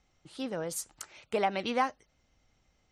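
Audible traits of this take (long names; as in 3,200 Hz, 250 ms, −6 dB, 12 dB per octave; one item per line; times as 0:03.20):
background noise floor −73 dBFS
spectral slope −3.5 dB per octave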